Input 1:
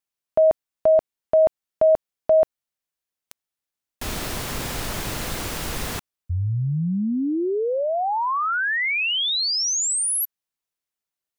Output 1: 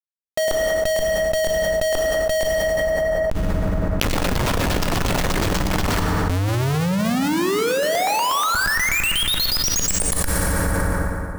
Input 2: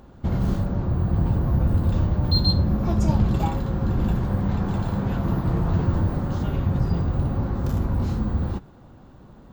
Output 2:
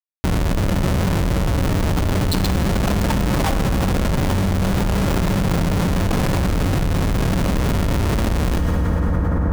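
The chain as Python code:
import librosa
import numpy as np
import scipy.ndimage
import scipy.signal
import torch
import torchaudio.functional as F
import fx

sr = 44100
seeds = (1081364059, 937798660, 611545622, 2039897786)

y = fx.dereverb_blind(x, sr, rt60_s=0.67)
y = fx.low_shelf(y, sr, hz=68.0, db=11.0)
y = fx.filter_lfo_lowpass(y, sr, shape='saw_down', hz=8.3, low_hz=600.0, high_hz=7500.0, q=3.2)
y = fx.schmitt(y, sr, flips_db=-30.5)
y = fx.rev_fdn(y, sr, rt60_s=2.5, lf_ratio=1.0, hf_ratio=0.5, size_ms=32.0, drr_db=7.5)
y = fx.env_flatten(y, sr, amount_pct=100)
y = y * 10.0 ** (-3.0 / 20.0)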